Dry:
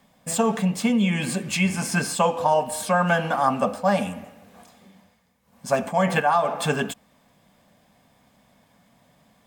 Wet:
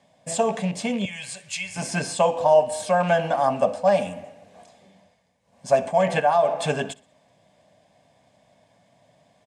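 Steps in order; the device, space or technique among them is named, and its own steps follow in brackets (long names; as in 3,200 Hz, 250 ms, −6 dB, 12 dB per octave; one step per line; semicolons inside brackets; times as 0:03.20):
0:01.05–0:01.76: guitar amp tone stack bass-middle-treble 10-0-10
car door speaker with a rattle (loose part that buzzes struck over −24 dBFS, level −27 dBFS; loudspeaker in its box 84–9,200 Hz, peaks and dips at 110 Hz +4 dB, 220 Hz −7 dB, 630 Hz +9 dB, 1,300 Hz −9 dB)
repeating echo 62 ms, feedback 38%, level −22 dB
level −1.5 dB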